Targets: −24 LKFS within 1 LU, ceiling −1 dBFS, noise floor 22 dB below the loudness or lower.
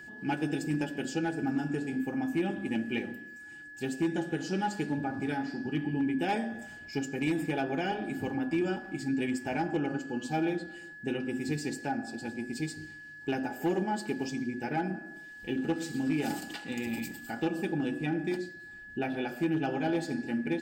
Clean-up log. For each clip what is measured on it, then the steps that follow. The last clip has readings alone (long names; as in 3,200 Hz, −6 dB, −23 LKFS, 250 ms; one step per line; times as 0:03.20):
share of clipped samples 0.4%; peaks flattened at −22.5 dBFS; interfering tone 1,700 Hz; level of the tone −45 dBFS; integrated loudness −33.0 LKFS; sample peak −22.5 dBFS; target loudness −24.0 LKFS
→ clipped peaks rebuilt −22.5 dBFS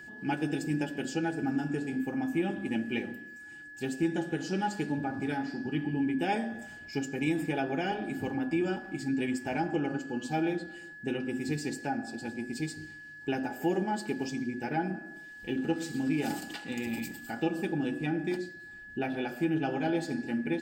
share of clipped samples 0.0%; interfering tone 1,700 Hz; level of the tone −45 dBFS
→ notch filter 1,700 Hz, Q 30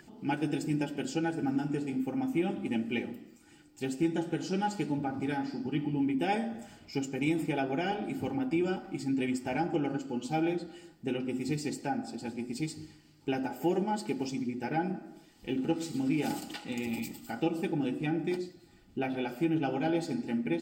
interfering tone none found; integrated loudness −33.0 LKFS; sample peak −17.5 dBFS; target loudness −24.0 LKFS
→ level +9 dB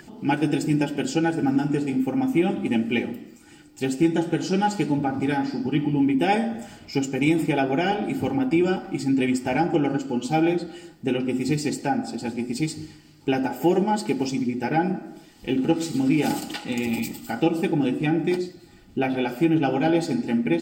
integrated loudness −24.0 LKFS; sample peak −8.5 dBFS; background noise floor −50 dBFS